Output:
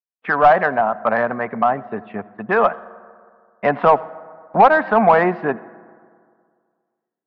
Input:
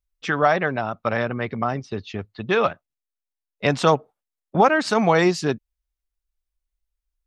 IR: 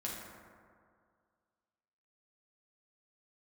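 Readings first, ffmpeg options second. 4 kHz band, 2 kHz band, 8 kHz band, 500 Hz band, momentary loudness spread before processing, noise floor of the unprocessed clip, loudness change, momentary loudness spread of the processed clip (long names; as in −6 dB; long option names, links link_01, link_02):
can't be measured, +4.0 dB, below −25 dB, +4.0 dB, 13 LU, below −85 dBFS, +4.5 dB, 16 LU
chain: -filter_complex "[0:a]highpass=150,equalizer=frequency=210:width_type=q:width=4:gain=6,equalizer=frequency=340:width_type=q:width=4:gain=-4,equalizer=frequency=710:width_type=q:width=4:gain=7,equalizer=frequency=1000:width_type=q:width=4:gain=6,equalizer=frequency=1700:width_type=q:width=4:gain=4,lowpass=frequency=2200:width=0.5412,lowpass=frequency=2200:width=1.3066,asplit=2[link_01][link_02];[link_02]highpass=frequency=720:poles=1,volume=13dB,asoftclip=type=tanh:threshold=0dB[link_03];[link_01][link_03]amix=inputs=2:normalize=0,lowpass=frequency=1100:poles=1,volume=-6dB,agate=range=-19dB:threshold=-43dB:ratio=16:detection=peak,asplit=2[link_04][link_05];[1:a]atrim=start_sample=2205,adelay=84[link_06];[link_05][link_06]afir=irnorm=-1:irlink=0,volume=-20.5dB[link_07];[link_04][link_07]amix=inputs=2:normalize=0"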